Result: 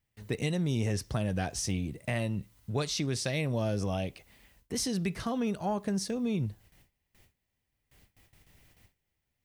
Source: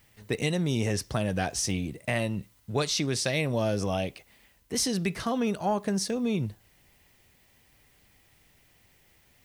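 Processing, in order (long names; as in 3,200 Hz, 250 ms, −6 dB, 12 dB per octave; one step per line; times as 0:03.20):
noise gate with hold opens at −50 dBFS
low-shelf EQ 190 Hz +7 dB
in parallel at −0.5 dB: downward compressor, threshold −38 dBFS, peak gain reduction 16.5 dB
on the sum: level −7 dB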